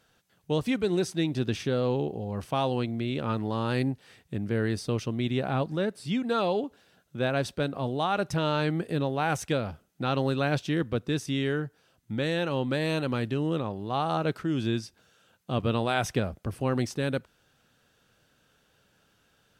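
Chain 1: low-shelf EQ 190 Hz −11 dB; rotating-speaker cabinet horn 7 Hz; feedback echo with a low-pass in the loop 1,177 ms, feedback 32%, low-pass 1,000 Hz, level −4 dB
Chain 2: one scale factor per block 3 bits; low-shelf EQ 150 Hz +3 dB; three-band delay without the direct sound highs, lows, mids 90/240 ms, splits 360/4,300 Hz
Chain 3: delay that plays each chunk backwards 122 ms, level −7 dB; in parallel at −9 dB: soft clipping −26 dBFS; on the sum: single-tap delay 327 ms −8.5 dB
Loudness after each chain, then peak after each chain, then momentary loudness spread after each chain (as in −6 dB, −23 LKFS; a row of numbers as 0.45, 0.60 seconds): −33.0, −29.0, −26.5 LKFS; −13.5, −13.0, −10.5 dBFS; 9, 6, 6 LU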